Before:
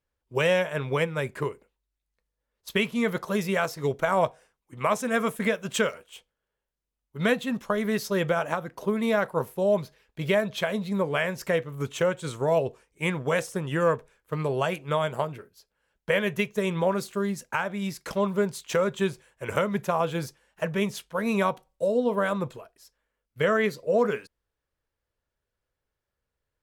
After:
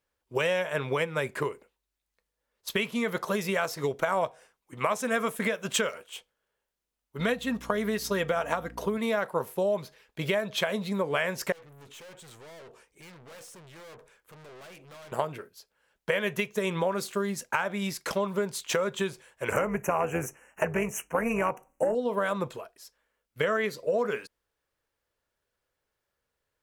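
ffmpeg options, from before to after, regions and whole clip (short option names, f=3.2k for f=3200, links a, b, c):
-filter_complex "[0:a]asettb=1/sr,asplit=3[a][b][c];[a]atrim=end=7.194[d];[b]atrim=start=7.19:end=8.98,asetpts=PTS-STARTPTS,afade=t=in:d=0.004:c=qsin,afade=t=out:st=1.786:d=0.004:c=qsin,aeval=exprs='val(0)+0.00708*(sin(2*PI*60*n/s)+sin(2*PI*2*60*n/s)/2+sin(2*PI*3*60*n/s)/3+sin(2*PI*4*60*n/s)/4+sin(2*PI*5*60*n/s)/5)':c=same,aecho=1:1:4.3:0.33,atrim=end_sample=78939[e];[c]atrim=start=8.976[f];[d][e]acrossfade=d=0.004:c1=hsin:c2=qsin[g];[g][f]acrossfade=d=0.004:c1=qsin:c2=hsin,asettb=1/sr,asplit=3[h][i][j];[h]atrim=end=11.524[k];[i]atrim=start=11.52:end=15.12,asetpts=PTS-STARTPTS,afade=t=in:d=0.004:c=qsin,afade=t=out:st=3.596:d=0.004:c=qsin,aeval=exprs='(tanh(126*val(0)+0.3)-tanh(0.3))/126':c=same,acompressor=threshold=-53dB:ratio=2.5:attack=3.2:release=140:knee=1:detection=peak[l];[j]atrim=start=15.116[m];[k][l]acrossfade=d=0.004:c1=hsin:c2=qsin[n];[n][m]acrossfade=d=0.004:c1=qsin:c2=hsin,asettb=1/sr,asplit=3[o][p][q];[o]atrim=end=19.524[r];[p]atrim=start=19.52:end=21.95,asetpts=PTS-STARTPTS,afade=t=in:d=0.004:c=qsin,afade=t=out:st=2.426:d=0.004:c=qsin,tremolo=f=250:d=0.621,aeval=exprs='0.251*sin(PI/2*1.58*val(0)/0.251)':c=same,asuperstop=centerf=4100:order=12:qfactor=1.4[s];[q]atrim=start=21.946[t];[r][s]acrossfade=d=0.004:c1=hsin:c2=qsin[u];[u][t]acrossfade=d=0.004:c1=qsin:c2=hsin,acompressor=threshold=-27dB:ratio=6,lowshelf=f=190:g=-10,volume=4.5dB"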